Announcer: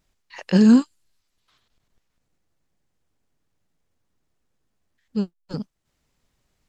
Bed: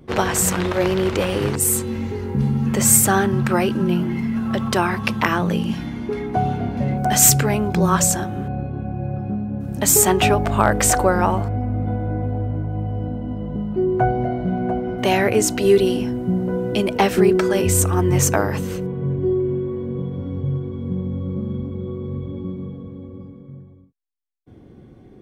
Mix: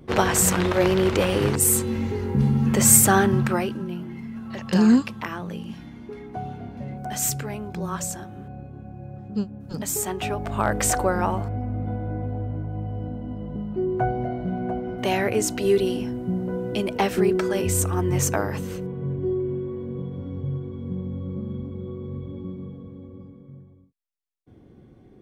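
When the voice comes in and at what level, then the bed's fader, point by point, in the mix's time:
4.20 s, -3.0 dB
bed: 3.35 s -0.5 dB
3.90 s -12.5 dB
10.21 s -12.5 dB
10.73 s -5.5 dB

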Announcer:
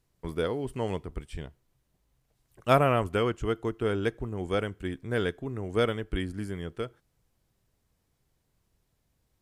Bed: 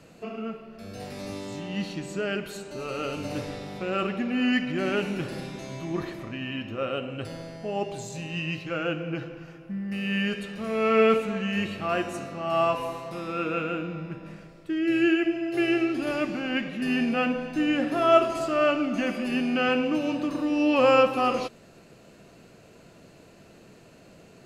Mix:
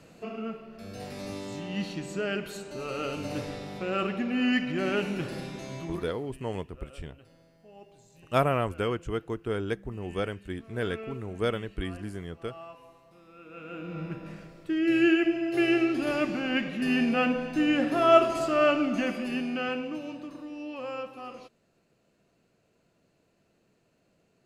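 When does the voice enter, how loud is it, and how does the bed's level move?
5.65 s, -2.5 dB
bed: 5.80 s -1.5 dB
6.41 s -21.5 dB
13.43 s -21.5 dB
14.01 s 0 dB
18.88 s 0 dB
20.82 s -17.5 dB

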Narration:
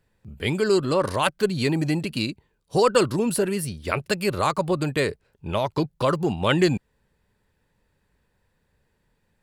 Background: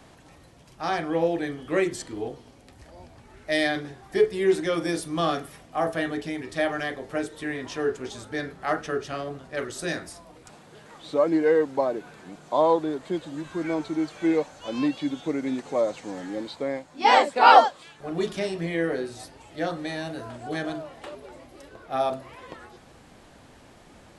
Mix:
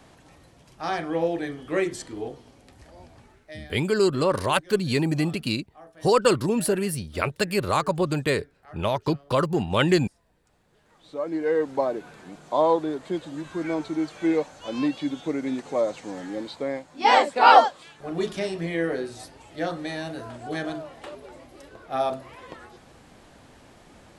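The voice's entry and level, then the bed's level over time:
3.30 s, -0.5 dB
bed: 3.24 s -1 dB
3.65 s -22.5 dB
10.35 s -22.5 dB
11.71 s 0 dB

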